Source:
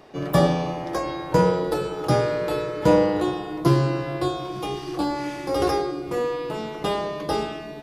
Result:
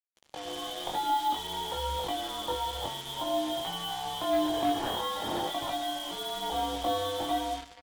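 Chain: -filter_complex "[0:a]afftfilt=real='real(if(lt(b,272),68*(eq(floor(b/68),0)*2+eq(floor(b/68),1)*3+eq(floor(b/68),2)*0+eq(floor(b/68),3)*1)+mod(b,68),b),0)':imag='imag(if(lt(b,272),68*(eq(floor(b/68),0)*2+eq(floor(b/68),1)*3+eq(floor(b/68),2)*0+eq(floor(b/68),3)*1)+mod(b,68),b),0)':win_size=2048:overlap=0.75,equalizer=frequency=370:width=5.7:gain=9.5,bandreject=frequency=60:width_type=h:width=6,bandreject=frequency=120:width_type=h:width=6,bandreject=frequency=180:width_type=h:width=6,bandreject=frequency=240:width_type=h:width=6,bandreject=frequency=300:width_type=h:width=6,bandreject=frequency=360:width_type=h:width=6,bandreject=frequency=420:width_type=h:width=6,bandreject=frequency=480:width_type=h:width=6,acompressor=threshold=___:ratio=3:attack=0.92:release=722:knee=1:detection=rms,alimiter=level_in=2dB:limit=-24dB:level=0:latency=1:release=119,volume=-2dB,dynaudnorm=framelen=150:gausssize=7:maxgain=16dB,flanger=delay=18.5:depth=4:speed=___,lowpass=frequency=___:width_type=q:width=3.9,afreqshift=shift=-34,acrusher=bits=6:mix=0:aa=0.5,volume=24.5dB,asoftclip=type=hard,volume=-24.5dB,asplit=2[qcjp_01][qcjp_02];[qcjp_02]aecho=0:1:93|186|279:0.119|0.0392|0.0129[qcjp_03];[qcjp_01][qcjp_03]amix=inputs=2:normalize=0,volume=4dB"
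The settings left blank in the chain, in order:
-22dB, 0.5, 870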